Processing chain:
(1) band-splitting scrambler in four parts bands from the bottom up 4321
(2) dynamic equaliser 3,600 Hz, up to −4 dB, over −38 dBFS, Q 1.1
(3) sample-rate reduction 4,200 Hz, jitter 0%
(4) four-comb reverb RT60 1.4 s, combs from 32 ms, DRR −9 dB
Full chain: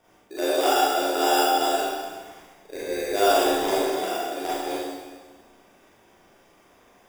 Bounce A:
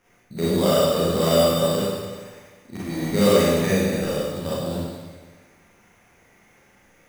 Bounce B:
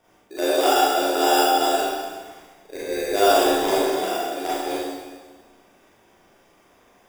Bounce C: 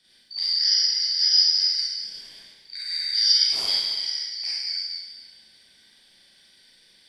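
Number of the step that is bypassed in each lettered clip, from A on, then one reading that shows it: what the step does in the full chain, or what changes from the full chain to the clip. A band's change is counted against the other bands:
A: 1, 1 kHz band −7.5 dB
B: 2, change in integrated loudness +2.5 LU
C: 3, change in crest factor +2.0 dB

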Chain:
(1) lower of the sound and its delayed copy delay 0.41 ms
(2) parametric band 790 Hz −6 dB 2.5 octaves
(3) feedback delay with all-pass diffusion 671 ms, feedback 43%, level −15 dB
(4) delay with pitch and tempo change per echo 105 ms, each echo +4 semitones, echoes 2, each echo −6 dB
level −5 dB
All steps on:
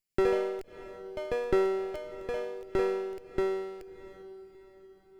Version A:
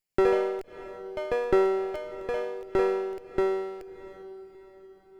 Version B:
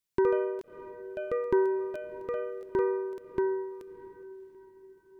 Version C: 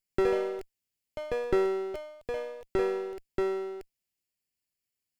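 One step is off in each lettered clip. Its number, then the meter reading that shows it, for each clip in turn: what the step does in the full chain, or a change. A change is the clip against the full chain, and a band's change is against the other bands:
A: 2, change in integrated loudness +3.5 LU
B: 1, 125 Hz band −5.0 dB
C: 3, change in momentary loudness spread −7 LU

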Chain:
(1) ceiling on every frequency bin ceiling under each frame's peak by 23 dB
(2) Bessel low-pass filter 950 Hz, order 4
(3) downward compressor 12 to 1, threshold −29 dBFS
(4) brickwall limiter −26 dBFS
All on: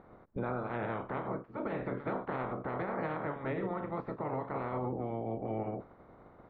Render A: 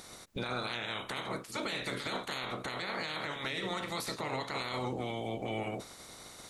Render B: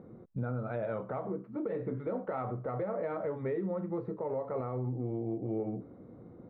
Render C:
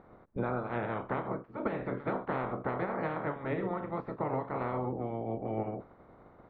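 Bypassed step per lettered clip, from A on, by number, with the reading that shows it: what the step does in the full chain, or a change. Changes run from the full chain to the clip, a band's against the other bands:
2, 2 kHz band +9.5 dB
1, 2 kHz band −8.5 dB
4, change in crest factor +5.0 dB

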